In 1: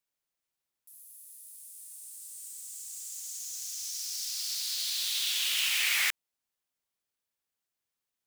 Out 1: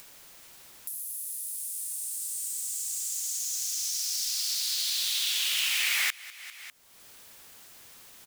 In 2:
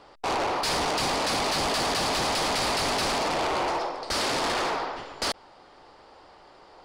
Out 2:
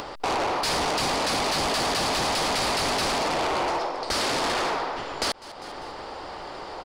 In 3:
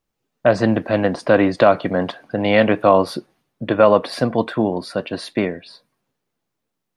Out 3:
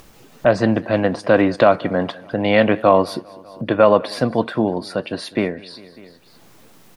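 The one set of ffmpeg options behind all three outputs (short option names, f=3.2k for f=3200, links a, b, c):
-af "aecho=1:1:199|398|597:0.0668|0.0287|0.0124,acompressor=mode=upward:threshold=-23dB:ratio=2.5"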